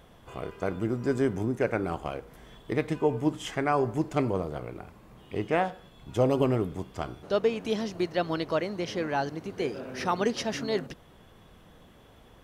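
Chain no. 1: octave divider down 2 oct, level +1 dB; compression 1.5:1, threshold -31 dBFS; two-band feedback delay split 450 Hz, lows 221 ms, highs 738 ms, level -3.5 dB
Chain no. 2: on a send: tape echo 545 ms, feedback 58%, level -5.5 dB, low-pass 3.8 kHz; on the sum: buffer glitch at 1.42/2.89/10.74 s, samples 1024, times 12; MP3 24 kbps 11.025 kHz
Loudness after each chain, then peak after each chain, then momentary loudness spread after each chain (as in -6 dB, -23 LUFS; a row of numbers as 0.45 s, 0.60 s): -30.5 LUFS, -29.0 LUFS; -13.0 dBFS, -12.5 dBFS; 8 LU, 11 LU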